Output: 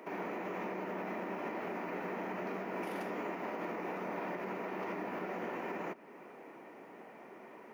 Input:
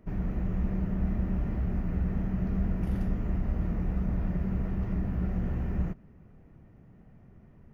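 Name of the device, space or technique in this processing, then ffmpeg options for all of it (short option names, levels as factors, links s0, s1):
laptop speaker: -af "highpass=f=340:w=0.5412,highpass=f=340:w=1.3066,equalizer=f=940:t=o:w=0.38:g=7,equalizer=f=2300:t=o:w=0.39:g=6.5,alimiter=level_in=9.44:limit=0.0631:level=0:latency=1:release=270,volume=0.106,volume=4.47"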